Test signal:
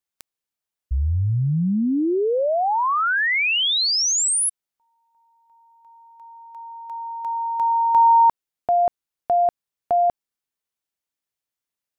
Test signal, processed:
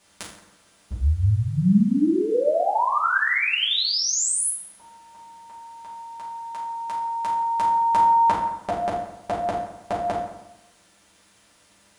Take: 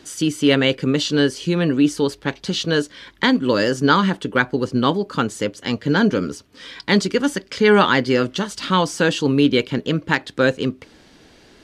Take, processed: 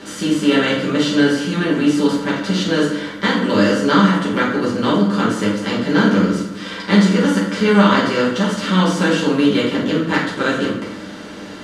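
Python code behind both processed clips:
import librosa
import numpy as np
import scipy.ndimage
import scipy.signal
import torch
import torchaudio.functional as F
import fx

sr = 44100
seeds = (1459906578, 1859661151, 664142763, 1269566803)

y = fx.bin_compress(x, sr, power=0.6)
y = fx.rev_fdn(y, sr, rt60_s=0.89, lf_ratio=1.1, hf_ratio=0.65, size_ms=30.0, drr_db=-7.0)
y = y * 10.0 ** (-10.5 / 20.0)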